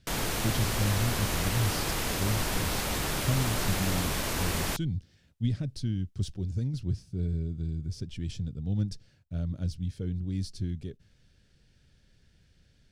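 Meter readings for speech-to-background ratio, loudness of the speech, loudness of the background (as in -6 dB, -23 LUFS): -3.0 dB, -33.5 LUFS, -30.5 LUFS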